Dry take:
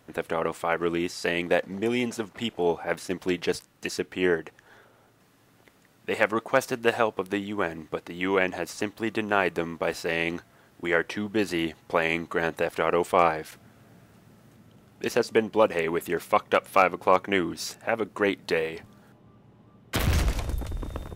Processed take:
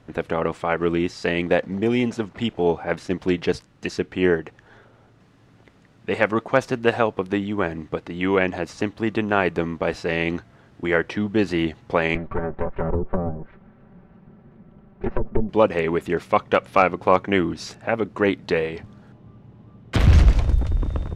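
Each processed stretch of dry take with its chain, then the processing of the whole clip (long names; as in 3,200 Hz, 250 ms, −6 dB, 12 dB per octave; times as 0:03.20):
0:12.15–0:15.49: lower of the sound and its delayed copy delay 5.2 ms + low-pass filter 1,700 Hz + treble cut that deepens with the level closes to 370 Hz, closed at −22.5 dBFS
whole clip: Bessel low-pass filter 4,700 Hz, order 2; low-shelf EQ 210 Hz +10 dB; level +2.5 dB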